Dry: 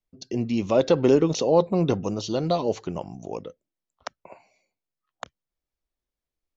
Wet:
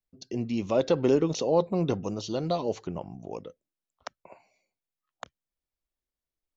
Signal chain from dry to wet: 2.87–3.31 tone controls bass +2 dB, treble -13 dB; gain -4.5 dB

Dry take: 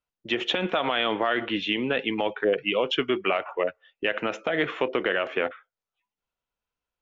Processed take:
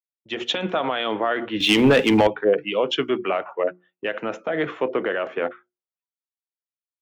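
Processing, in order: HPF 78 Hz; bell 2700 Hz -6 dB 1.4 oct; notches 60/120/180/240/300/360 Hz; in parallel at -0.5 dB: limiter -21.5 dBFS, peak gain reduction 8.5 dB; 1.6–2.27 on the sum: sample leveller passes 2; three-band expander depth 100%

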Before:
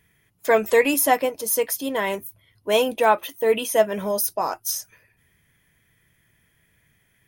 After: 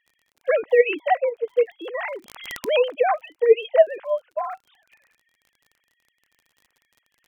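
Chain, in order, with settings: sine-wave speech; crackle 39/s -43 dBFS; 2.1–2.88 backwards sustainer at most 66 dB/s

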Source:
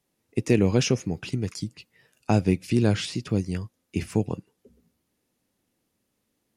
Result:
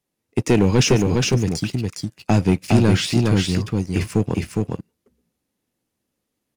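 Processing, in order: sample leveller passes 2; on a send: echo 0.41 s -3 dB

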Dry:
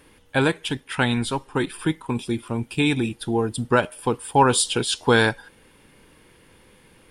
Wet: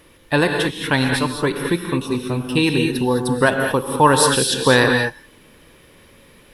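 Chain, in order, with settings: speed mistake 44.1 kHz file played as 48 kHz; non-linear reverb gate 0.24 s rising, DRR 3 dB; gain +3 dB

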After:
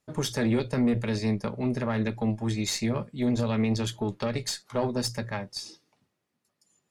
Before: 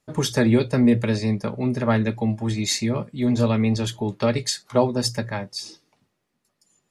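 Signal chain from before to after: added harmonics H 4 -23 dB, 7 -33 dB, 8 -34 dB, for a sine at -5 dBFS; limiter -13.5 dBFS, peak gain reduction 8 dB; gain -3 dB

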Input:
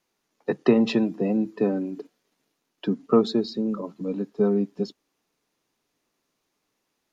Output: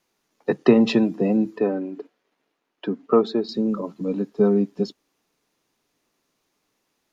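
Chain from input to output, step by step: 1.58–3.49 tone controls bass -10 dB, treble -13 dB; gain +3.5 dB

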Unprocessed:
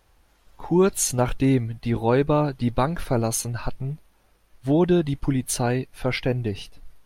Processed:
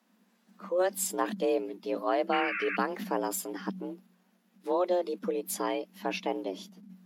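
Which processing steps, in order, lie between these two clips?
painted sound noise, 2.32–2.77, 930–2500 Hz -25 dBFS; frequency shift +180 Hz; formant shift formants +2 st; gain -8.5 dB

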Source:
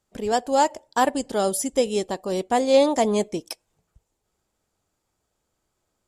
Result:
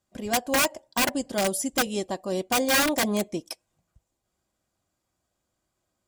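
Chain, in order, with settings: wrapped overs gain 13.5 dB; notch comb 440 Hz; gain -1.5 dB

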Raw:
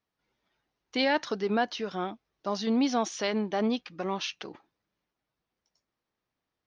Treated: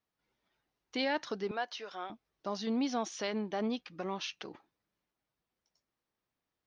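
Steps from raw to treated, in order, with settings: in parallel at -2.5 dB: compressor, threshold -36 dBFS, peak gain reduction 14 dB; 1.51–2.1 on the sum: HPF 570 Hz 12 dB/oct; gain -8 dB

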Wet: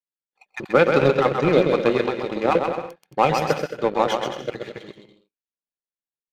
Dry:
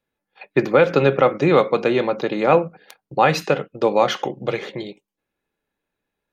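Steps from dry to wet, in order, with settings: random spectral dropouts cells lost 24%; bouncing-ball echo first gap 0.13 s, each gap 0.7×, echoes 5; power-law curve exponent 1.4

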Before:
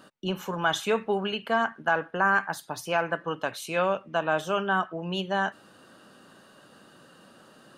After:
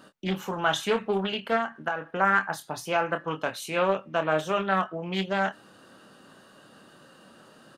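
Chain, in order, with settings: 1.56–2.21 compressor 10:1, threshold -25 dBFS, peak gain reduction 7.5 dB; doubler 26 ms -8 dB; Doppler distortion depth 0.29 ms

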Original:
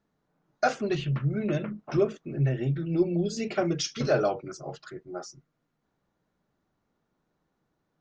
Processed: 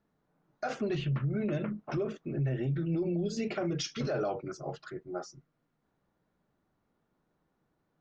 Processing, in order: LPF 3400 Hz 6 dB/oct; limiter -24.5 dBFS, peak gain reduction 11.5 dB

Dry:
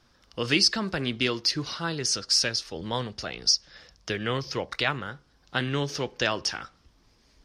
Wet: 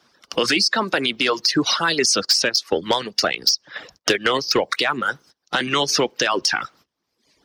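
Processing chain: HPF 210 Hz 12 dB/oct; gate -58 dBFS, range -21 dB; reverb removal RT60 0.74 s; harmonic-percussive split harmonic -12 dB; compressor 5:1, threshold -27 dBFS, peak gain reduction 10 dB; 2.24–4.63 transient shaper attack +11 dB, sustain -5 dB; soft clip -15.5 dBFS, distortion -12 dB; maximiser +26.5 dB; three-band squash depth 40%; gain -7.5 dB

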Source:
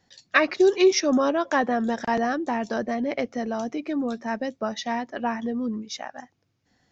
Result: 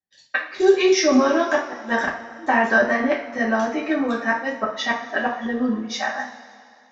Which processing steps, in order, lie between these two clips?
expander -43 dBFS; bell 1500 Hz +6.5 dB 2.2 oct, from 1.6 s +14 dB; flipped gate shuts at -7 dBFS, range -30 dB; two-slope reverb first 0.37 s, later 2.4 s, from -18 dB, DRR -5.5 dB; gain -5 dB

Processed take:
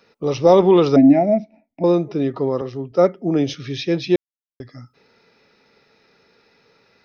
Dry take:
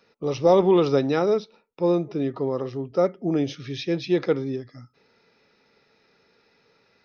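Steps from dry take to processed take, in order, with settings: 0.96–1.84 EQ curve 170 Hz 0 dB, 280 Hz +13 dB, 460 Hz -27 dB, 650 Hz +13 dB, 1200 Hz -30 dB, 2100 Hz +1 dB, 3600 Hz -28 dB, 6100 Hz -17 dB; 2.61–3.54 three-band expander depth 40%; 4.16–4.6 mute; gain +5 dB

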